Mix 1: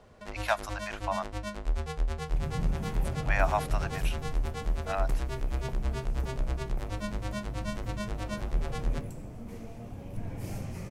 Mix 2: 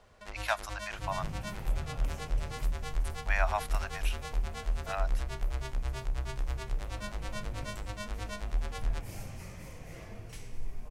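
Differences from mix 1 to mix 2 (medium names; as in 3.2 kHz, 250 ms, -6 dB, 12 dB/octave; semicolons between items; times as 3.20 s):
second sound: entry -1.35 s; master: add peaking EQ 230 Hz -9.5 dB 3 oct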